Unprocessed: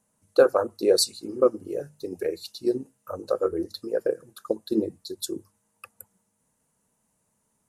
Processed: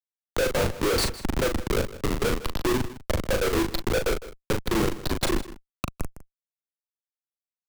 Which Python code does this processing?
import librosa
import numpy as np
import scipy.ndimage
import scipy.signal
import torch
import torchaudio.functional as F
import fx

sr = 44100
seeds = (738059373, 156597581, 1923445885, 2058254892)

p1 = scipy.signal.sosfilt(scipy.signal.butter(8, 11000.0, 'lowpass', fs=sr, output='sos'), x)
p2 = fx.rider(p1, sr, range_db=3, speed_s=2.0)
p3 = p1 + (p2 * 10.0 ** (-3.0 / 20.0))
p4 = fx.schmitt(p3, sr, flips_db=-23.5)
p5 = fx.doubler(p4, sr, ms=39.0, db=-5.5)
p6 = p5 + 10.0 ** (-17.5 / 20.0) * np.pad(p5, (int(157 * sr / 1000.0), 0))[:len(p5)]
y = fx.band_squash(p6, sr, depth_pct=40)